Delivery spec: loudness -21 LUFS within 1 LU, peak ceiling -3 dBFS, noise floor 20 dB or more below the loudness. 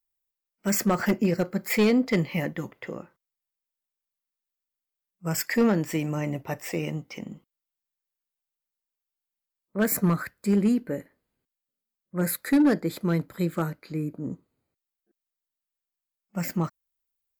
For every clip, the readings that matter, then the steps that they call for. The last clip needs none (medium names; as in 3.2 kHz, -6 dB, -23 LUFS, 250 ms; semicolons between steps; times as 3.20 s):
clipped samples 0.5%; clipping level -15.0 dBFS; loudness -26.5 LUFS; peak level -15.0 dBFS; loudness target -21.0 LUFS
-> clip repair -15 dBFS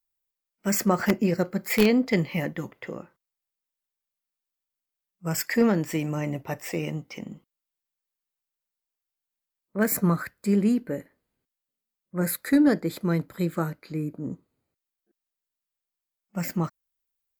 clipped samples 0.0%; loudness -26.0 LUFS; peak level -6.0 dBFS; loudness target -21.0 LUFS
-> trim +5 dB; peak limiter -3 dBFS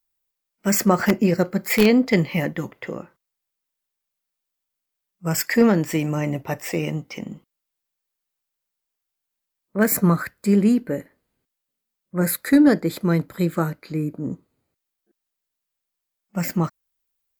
loudness -21.0 LUFS; peak level -3.0 dBFS; noise floor -82 dBFS